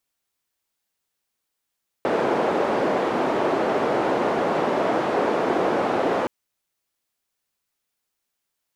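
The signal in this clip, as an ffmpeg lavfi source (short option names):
-f lavfi -i "anoisesrc=c=white:d=4.22:r=44100:seed=1,highpass=f=330,lowpass=f=580,volume=1.3dB"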